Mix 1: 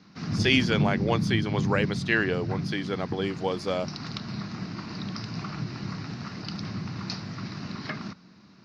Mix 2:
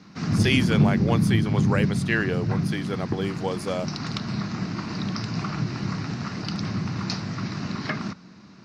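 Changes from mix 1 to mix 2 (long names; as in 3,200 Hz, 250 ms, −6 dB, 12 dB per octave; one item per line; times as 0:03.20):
background +6.0 dB
master: add high shelf with overshoot 7,100 Hz +11.5 dB, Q 1.5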